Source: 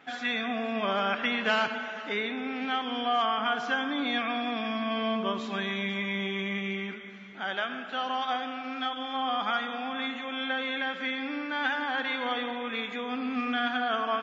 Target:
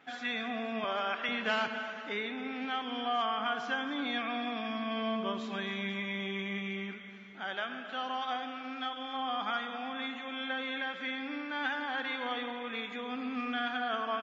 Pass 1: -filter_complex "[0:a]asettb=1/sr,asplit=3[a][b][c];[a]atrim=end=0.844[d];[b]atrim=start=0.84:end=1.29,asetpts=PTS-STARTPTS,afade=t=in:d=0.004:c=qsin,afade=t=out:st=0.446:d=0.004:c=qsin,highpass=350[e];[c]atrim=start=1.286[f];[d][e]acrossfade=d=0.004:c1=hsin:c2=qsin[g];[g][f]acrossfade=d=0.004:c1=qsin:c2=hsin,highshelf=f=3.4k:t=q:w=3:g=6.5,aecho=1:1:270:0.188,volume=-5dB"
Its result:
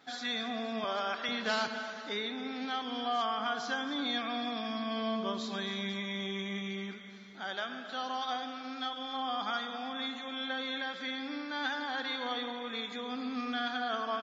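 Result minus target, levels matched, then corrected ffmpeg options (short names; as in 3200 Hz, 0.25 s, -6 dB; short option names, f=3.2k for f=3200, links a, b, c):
8000 Hz band +9.0 dB
-filter_complex "[0:a]asettb=1/sr,asplit=3[a][b][c];[a]atrim=end=0.844[d];[b]atrim=start=0.84:end=1.29,asetpts=PTS-STARTPTS,afade=t=in:d=0.004:c=qsin,afade=t=out:st=0.446:d=0.004:c=qsin,highpass=350[e];[c]atrim=start=1.286[f];[d][e]acrossfade=d=0.004:c1=hsin:c2=qsin[g];[g][f]acrossfade=d=0.004:c1=qsin:c2=hsin,aecho=1:1:270:0.188,volume=-5dB"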